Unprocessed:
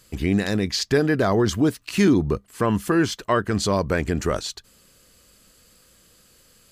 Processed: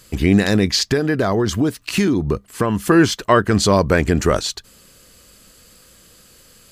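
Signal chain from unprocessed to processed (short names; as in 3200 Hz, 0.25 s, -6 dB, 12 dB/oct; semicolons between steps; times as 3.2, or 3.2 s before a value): 0.78–2.86 compressor 4:1, threshold -22 dBFS, peak gain reduction 8 dB; gain +7 dB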